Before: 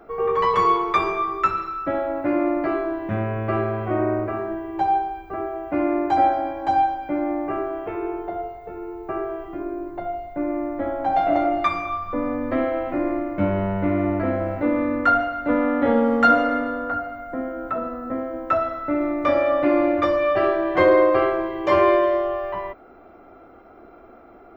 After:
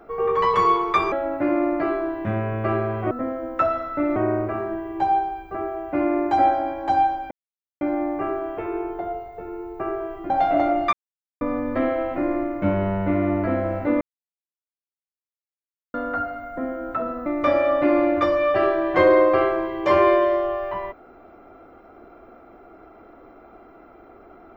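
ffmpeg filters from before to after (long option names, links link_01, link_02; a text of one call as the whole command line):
ffmpeg -i in.wav -filter_complex "[0:a]asplit=11[link_01][link_02][link_03][link_04][link_05][link_06][link_07][link_08][link_09][link_10][link_11];[link_01]atrim=end=1.122[link_12];[link_02]atrim=start=1.958:end=3.952[link_13];[link_03]atrim=start=18.018:end=19.072[link_14];[link_04]atrim=start=3.948:end=7.1,asetpts=PTS-STARTPTS,afade=type=out:start_time=3.148:duration=0.004:curve=hsin,apad=pad_dur=0.5[link_15];[link_05]atrim=start=7.1:end=9.592,asetpts=PTS-STARTPTS,afade=type=in:duration=0.004:curve=hsin[link_16];[link_06]atrim=start=11.058:end=11.69,asetpts=PTS-STARTPTS,afade=type=out:start_time=0.628:duration=0.004:curve=hsin[link_17];[link_07]atrim=start=11.69:end=12.17,asetpts=PTS-STARTPTS,volume=0[link_18];[link_08]atrim=start=12.17:end=14.77,asetpts=PTS-STARTPTS,afade=type=in:duration=0.004:curve=hsin,afade=type=out:start_time=2.596:duration=0.004:curve=hsin[link_19];[link_09]atrim=start=14.77:end=16.7,asetpts=PTS-STARTPTS,volume=0[link_20];[link_10]atrim=start=16.7:end=18.022,asetpts=PTS-STARTPTS,afade=type=in:duration=0.004:curve=hsin[link_21];[link_11]atrim=start=19.068[link_22];[link_12][link_13]acrossfade=duration=0.004:curve1=hsin:curve2=hsin[link_23];[link_23][link_14]acrossfade=duration=0.004:curve1=hsin:curve2=hsin[link_24];[link_15][link_16]concat=n=2:v=0:a=1[link_25];[link_24][link_25]acrossfade=duration=0.004:curve1=hsin:curve2=hsin[link_26];[link_17][link_18][link_19][link_20][link_21]concat=n=5:v=0:a=1[link_27];[link_26][link_27]acrossfade=duration=0.004:curve1=hsin:curve2=hsin[link_28];[link_28][link_22]acrossfade=duration=0.004:curve1=hsin:curve2=hsin" out.wav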